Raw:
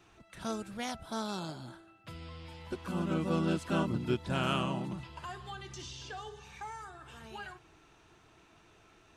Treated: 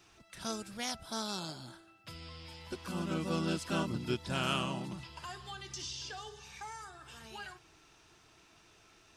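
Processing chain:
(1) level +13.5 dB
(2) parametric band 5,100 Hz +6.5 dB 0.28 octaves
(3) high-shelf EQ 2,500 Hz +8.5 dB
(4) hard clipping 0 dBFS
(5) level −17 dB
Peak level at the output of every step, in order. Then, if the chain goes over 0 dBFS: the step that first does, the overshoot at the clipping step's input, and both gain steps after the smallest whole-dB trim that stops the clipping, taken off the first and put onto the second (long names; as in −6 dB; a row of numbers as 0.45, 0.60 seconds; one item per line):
−5.0, −5.0, −3.0, −3.0, −20.0 dBFS
no step passes full scale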